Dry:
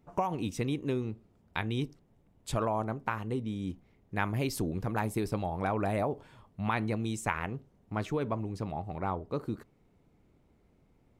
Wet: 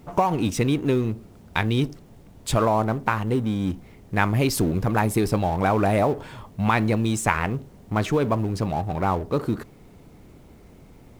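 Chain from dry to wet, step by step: companding laws mixed up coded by mu; trim +9 dB

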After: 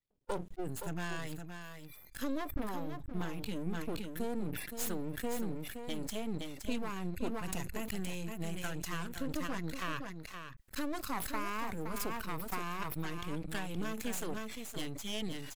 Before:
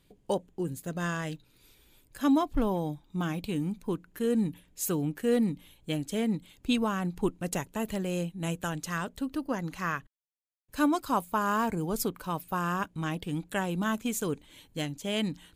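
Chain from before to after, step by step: spectral noise reduction 28 dB; compression 4:1, threshold -37 dBFS, peak gain reduction 14 dB; half-wave rectifier; on a send: delay 519 ms -8 dB; on the sum: decay stretcher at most 41 dB/s; trim +4.5 dB

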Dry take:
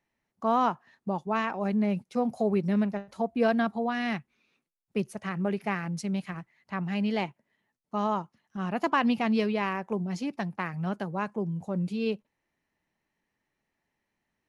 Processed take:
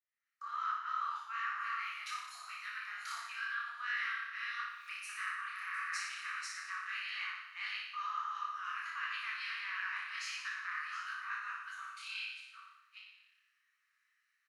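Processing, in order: chunks repeated in reverse 390 ms, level -10 dB; Doppler pass-by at 3.92 s, 8 m/s, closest 2 m; recorder AGC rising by 53 dB/s; Chebyshev high-pass 1.2 kHz, order 6; treble shelf 2.4 kHz -9 dB; band-stop 3.4 kHz, Q 14; reverse; compression 6:1, threshold -48 dBFS, peak gain reduction 11.5 dB; reverse; doubling 33 ms -3 dB; on a send: flutter echo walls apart 10.1 m, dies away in 0.97 s; on the sum: detune thickener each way 53 cents; trim +12 dB

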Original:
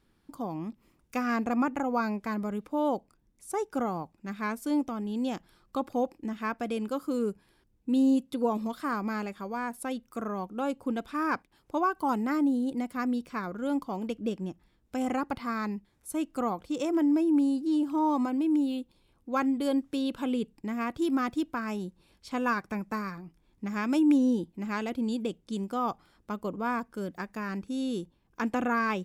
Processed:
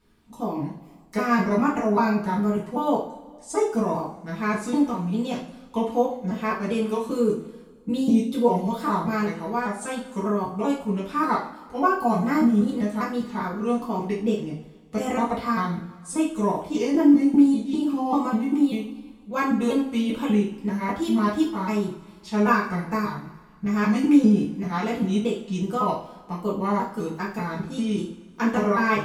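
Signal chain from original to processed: pitch shift switched off and on -3 st, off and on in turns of 197 ms; two-slope reverb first 0.44 s, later 1.9 s, from -19 dB, DRR -6.5 dB

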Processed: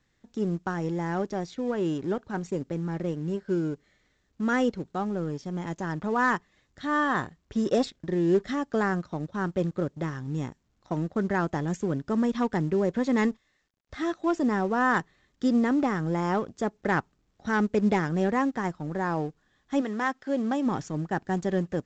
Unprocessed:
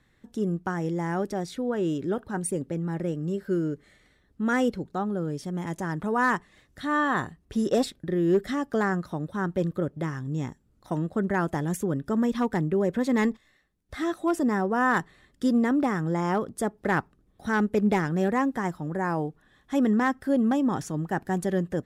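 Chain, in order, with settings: companding laws mixed up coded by A; 19.80–20.65 s: high-pass 780 Hz -> 250 Hz 6 dB/octave; µ-law 128 kbps 16 kHz

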